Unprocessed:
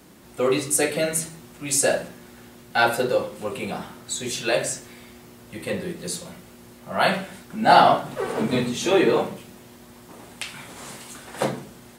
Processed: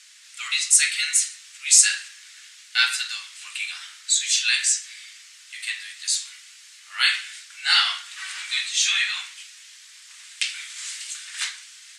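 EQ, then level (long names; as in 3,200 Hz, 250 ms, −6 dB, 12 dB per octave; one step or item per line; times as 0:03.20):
inverse Chebyshev high-pass filter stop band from 510 Hz, stop band 60 dB
low-pass filter 7,700 Hz 24 dB per octave
spectral tilt +3 dB per octave
+3.5 dB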